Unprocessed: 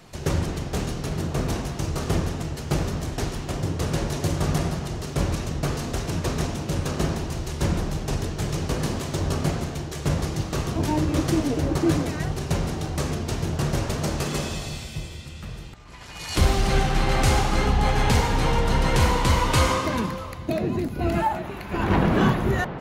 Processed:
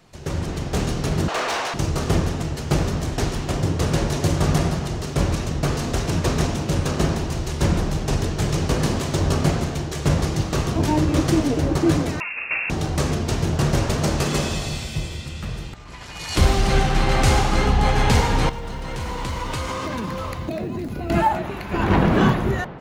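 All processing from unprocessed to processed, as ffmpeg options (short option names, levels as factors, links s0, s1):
-filter_complex "[0:a]asettb=1/sr,asplit=3[s0][s1][s2];[s0]atrim=end=1.284[s3];[s1]atrim=start=1.28:end=1.74,asetpts=PTS-STARTPTS,afade=t=in:d=0.004:c=qsin,afade=t=out:st=0.456:d=0.004:c=qsin,highpass=630,highshelf=f=6700:g=-9.5,asplit=2[s4][s5];[s5]highpass=f=720:p=1,volume=8.91,asoftclip=type=tanh:threshold=0.0794[s6];[s4][s6]amix=inputs=2:normalize=0,lowpass=f=5200:p=1,volume=0.501[s7];[s2]atrim=start=1.736[s8];[s3][s7]acrossfade=d=0.004:c1=hsin:c2=qsin[s9];[s9][s8]acrossfade=d=0.004:c1=qsin:c2=hsin,asettb=1/sr,asplit=3[s10][s11][s12];[s10]atrim=end=12.204[s13];[s11]atrim=start=12.2:end=12.7,asetpts=PTS-STARTPTS,afade=t=in:d=0.004:c=qsin,afade=t=out:st=0.496:d=0.004:c=qsin,highpass=f=190:w=0.5412,highpass=f=190:w=1.3066,lowpass=f=2500:t=q:w=0.5098,lowpass=f=2500:t=q:w=0.6013,lowpass=f=2500:t=q:w=0.9,lowpass=f=2500:t=q:w=2.563,afreqshift=-2900[s14];[s12]atrim=start=12.696[s15];[s13][s14]acrossfade=d=0.004:c1=hsin:c2=qsin[s16];[s16][s15]acrossfade=d=0.004:c1=qsin:c2=hsin,asettb=1/sr,asplit=3[s17][s18][s19];[s17]atrim=end=18.494[s20];[s18]atrim=start=18.49:end=21.1,asetpts=PTS-STARTPTS,afade=t=in:d=0.004:c=qsin,afade=t=out:st=2.606:d=0.004:c=qsin,acompressor=threshold=0.0355:ratio=12:attack=3.2:release=140:knee=1:detection=peak,acrusher=bits=9:mode=log:mix=0:aa=0.000001[s21];[s19]atrim=start=21.096[s22];[s20][s21]acrossfade=d=0.004:c1=hsin:c2=qsin[s23];[s23][s22]acrossfade=d=0.004:c1=qsin:c2=hsin,equalizer=f=12000:w=1.5:g=-4,dynaudnorm=f=130:g=7:m=3.76,volume=0.562"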